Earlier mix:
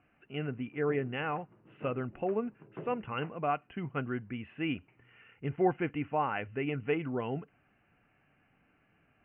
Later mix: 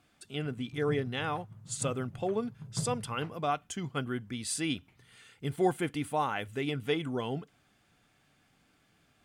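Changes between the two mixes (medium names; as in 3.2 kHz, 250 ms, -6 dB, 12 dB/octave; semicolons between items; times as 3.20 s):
background: remove resonant high-pass 340 Hz, resonance Q 4.2; master: remove Chebyshev low-pass 2.9 kHz, order 8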